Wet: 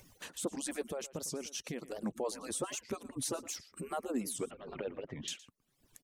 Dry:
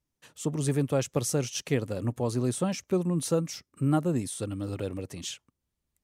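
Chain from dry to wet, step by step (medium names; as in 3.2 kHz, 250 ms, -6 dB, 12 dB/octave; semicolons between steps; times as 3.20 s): harmonic-percussive separation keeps percussive; 4.39–5.28 s: low-pass 2.8 kHz 24 dB/octave; upward compressor, threshold -35 dBFS; peak limiter -23.5 dBFS, peak gain reduction 8.5 dB; 0.81–2.03 s: compression 3:1, threshold -36 dBFS, peak gain reduction 6.5 dB; delay 115 ms -18 dB; warped record 78 rpm, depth 250 cents; trim -2 dB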